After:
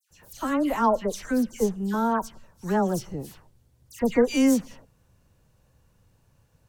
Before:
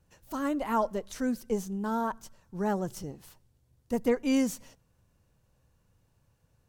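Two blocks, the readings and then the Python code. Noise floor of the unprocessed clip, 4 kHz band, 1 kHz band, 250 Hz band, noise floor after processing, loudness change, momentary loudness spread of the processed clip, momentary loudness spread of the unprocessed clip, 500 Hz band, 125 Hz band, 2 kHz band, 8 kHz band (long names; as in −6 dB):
−70 dBFS, +6.0 dB, +6.0 dB, +6.0 dB, −65 dBFS, +6.0 dB, 16 LU, 16 LU, +6.0 dB, +6.0 dB, +6.0 dB, +6.0 dB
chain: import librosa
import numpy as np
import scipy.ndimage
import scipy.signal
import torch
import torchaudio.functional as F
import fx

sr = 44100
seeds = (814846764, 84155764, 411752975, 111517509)

y = fx.dispersion(x, sr, late='lows', ms=108.0, hz=2200.0)
y = F.gain(torch.from_numpy(y), 6.0).numpy()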